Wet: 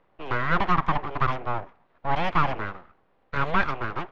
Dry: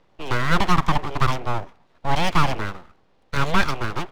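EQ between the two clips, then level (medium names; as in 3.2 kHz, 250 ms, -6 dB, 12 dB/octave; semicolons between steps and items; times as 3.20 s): low-pass 2 kHz 12 dB/octave; bass shelf 440 Hz -7 dB; band-stop 890 Hz, Q 26; 0.0 dB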